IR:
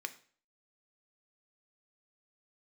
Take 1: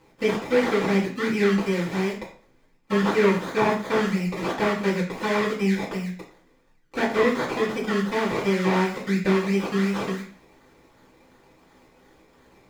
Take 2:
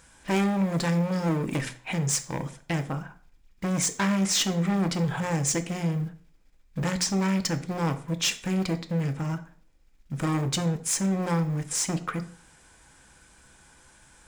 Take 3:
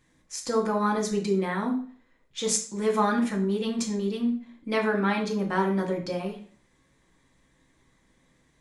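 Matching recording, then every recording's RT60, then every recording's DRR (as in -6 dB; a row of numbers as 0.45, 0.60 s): 2; 0.45, 0.45, 0.45 s; -6.0, 8.0, -0.5 dB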